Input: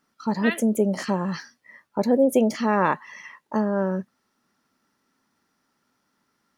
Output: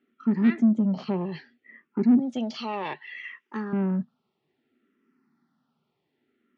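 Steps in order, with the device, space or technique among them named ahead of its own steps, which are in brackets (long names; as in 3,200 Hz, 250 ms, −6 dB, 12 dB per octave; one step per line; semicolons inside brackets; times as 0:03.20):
0:02.19–0:03.73: meter weighting curve ITU-R 468
barber-pole phaser into a guitar amplifier (frequency shifter mixed with the dry sound −0.63 Hz; soft clipping −22 dBFS, distortion −13 dB; loudspeaker in its box 110–3,500 Hz, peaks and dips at 150 Hz +8 dB, 240 Hz +9 dB, 380 Hz +9 dB, 560 Hz −6 dB, 990 Hz −6 dB, 1,600 Hz −5 dB)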